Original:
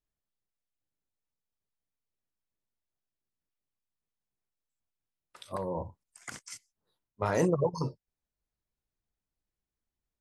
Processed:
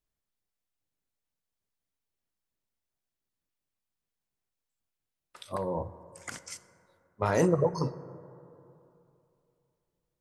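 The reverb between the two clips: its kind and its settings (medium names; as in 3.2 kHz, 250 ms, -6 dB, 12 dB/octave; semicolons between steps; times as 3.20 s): plate-style reverb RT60 2.9 s, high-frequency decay 0.3×, DRR 15 dB; trim +2 dB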